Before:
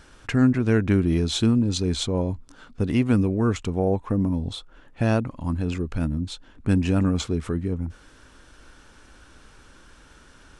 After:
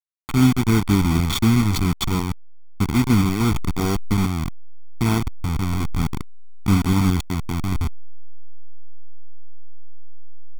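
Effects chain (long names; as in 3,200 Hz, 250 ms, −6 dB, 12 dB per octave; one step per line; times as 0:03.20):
hold until the input has moved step −19.5 dBFS
comb filter 0.9 ms, depth 95%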